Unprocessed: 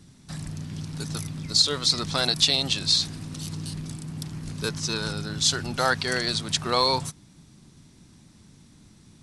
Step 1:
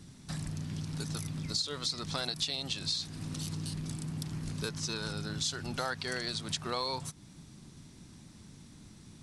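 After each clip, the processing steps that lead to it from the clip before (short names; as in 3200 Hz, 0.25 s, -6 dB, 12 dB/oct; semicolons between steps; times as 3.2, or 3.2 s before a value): compressor 3:1, threshold -35 dBFS, peak gain reduction 15 dB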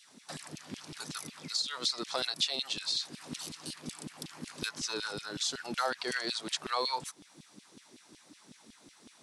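LFO high-pass saw down 5.4 Hz 220–3300 Hz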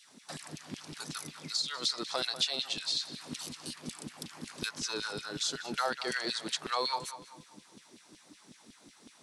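darkening echo 0.194 s, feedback 39%, low-pass 4000 Hz, level -12 dB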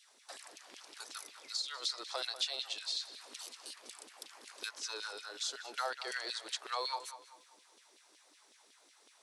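HPF 440 Hz 24 dB/oct; gain -5 dB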